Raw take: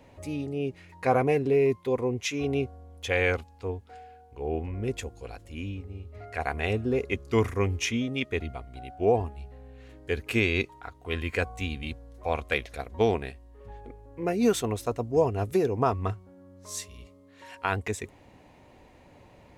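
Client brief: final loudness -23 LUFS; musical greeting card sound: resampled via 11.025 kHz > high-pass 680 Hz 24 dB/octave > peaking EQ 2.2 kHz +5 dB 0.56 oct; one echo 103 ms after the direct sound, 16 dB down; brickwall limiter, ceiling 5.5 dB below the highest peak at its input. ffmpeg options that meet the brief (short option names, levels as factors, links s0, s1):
-af "alimiter=limit=0.141:level=0:latency=1,aecho=1:1:103:0.158,aresample=11025,aresample=44100,highpass=f=680:w=0.5412,highpass=f=680:w=1.3066,equalizer=f=2200:t=o:w=0.56:g=5,volume=3.76"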